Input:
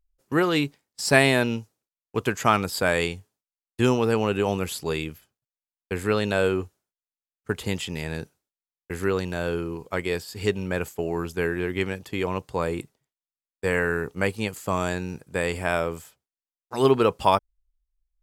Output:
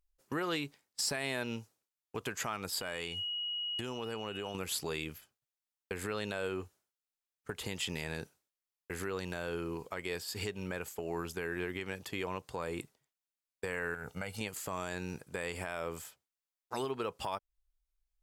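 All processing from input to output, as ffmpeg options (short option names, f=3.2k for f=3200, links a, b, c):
-filter_complex "[0:a]asettb=1/sr,asplit=3[a][b][c];[a]atrim=end=2.814[d];[b]atrim=start=2.81:end=4.55,asetpts=PTS-STARTPTS,afade=t=in:d=0.004:c=qsin,afade=t=out:st=1.736:d=0.004:c=qsin,aeval=exprs='val(0)+0.02*sin(2*PI*2900*n/s)':c=same,acompressor=threshold=-32dB:ratio=8:attack=3.2:release=140:knee=1:detection=peak[e];[c]atrim=start=4.546[f];[d][e]acrossfade=d=0.004:c1=hsin:c2=qsin[g];[g][f]acrossfade=d=0.004:c1=qsin:c2=hsin,asettb=1/sr,asplit=3[h][i][j];[h]atrim=end=13.944[k];[i]atrim=start=13.94:end=14.41,asetpts=PTS-STARTPTS,afade=t=in:d=0.004:c=qsin,afade=t=out:st=0.466:d=0.004:c=qsin,highpass=50,aecho=1:1:1.4:0.71,atrim=end_sample=20727,acompressor=threshold=-30dB:ratio=6:attack=3.2:release=140:knee=1:detection=peak[l];[j]atrim=start=14.406[m];[k][l]acrossfade=d=0.004:c1=hsin:c2=qsin[n];[n][m]acrossfade=d=0.004:c1=qsin:c2=hsin,acompressor=threshold=-28dB:ratio=6,alimiter=limit=-22.5dB:level=0:latency=1:release=108,lowshelf=f=470:g=-6.5"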